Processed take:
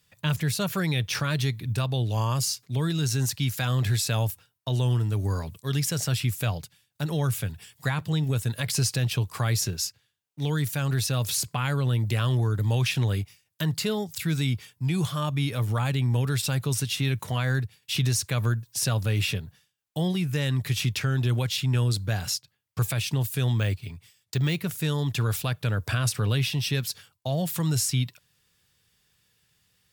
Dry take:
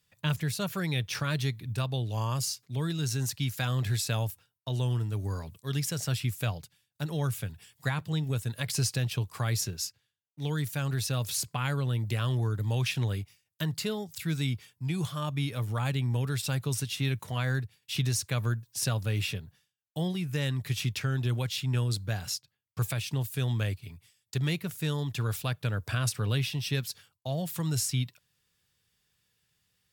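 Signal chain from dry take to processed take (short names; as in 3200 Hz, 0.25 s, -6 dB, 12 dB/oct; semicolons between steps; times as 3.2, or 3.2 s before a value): in parallel at +1 dB: limiter -26 dBFS, peak gain reduction 10.5 dB; 23.58–24.56 on the sum: careless resampling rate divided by 2×, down filtered, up hold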